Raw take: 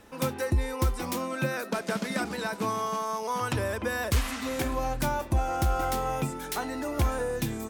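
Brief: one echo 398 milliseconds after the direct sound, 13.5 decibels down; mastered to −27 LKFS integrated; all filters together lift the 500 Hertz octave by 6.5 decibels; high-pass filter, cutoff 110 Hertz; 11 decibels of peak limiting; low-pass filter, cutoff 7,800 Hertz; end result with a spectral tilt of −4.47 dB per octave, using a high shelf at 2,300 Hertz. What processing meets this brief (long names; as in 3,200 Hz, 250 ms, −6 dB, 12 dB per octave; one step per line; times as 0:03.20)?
high-pass filter 110 Hz
low-pass filter 7,800 Hz
parametric band 500 Hz +7 dB
high-shelf EQ 2,300 Hz +3.5 dB
brickwall limiter −23 dBFS
single-tap delay 398 ms −13.5 dB
level +4 dB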